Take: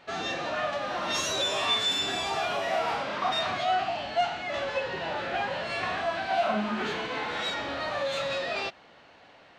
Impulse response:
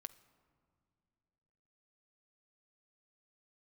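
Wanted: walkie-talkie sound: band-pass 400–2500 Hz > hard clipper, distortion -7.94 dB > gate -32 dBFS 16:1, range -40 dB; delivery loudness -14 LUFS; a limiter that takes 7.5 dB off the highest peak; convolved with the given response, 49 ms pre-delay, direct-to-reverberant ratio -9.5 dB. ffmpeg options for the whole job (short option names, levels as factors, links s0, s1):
-filter_complex "[0:a]alimiter=limit=0.0708:level=0:latency=1,asplit=2[s0][s1];[1:a]atrim=start_sample=2205,adelay=49[s2];[s1][s2]afir=irnorm=-1:irlink=0,volume=5.62[s3];[s0][s3]amix=inputs=2:normalize=0,highpass=400,lowpass=2500,asoftclip=type=hard:threshold=0.0531,agate=range=0.01:threshold=0.0251:ratio=16,volume=4.47"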